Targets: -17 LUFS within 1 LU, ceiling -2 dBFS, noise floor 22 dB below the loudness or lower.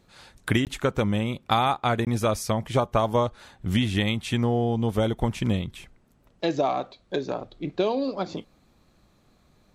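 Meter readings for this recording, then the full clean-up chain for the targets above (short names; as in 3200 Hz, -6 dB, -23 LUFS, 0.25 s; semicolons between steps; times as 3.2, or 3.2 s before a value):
dropouts 2; longest dropout 18 ms; loudness -26.0 LUFS; peak -6.5 dBFS; loudness target -17.0 LUFS
-> interpolate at 0.65/2.05, 18 ms; gain +9 dB; limiter -2 dBFS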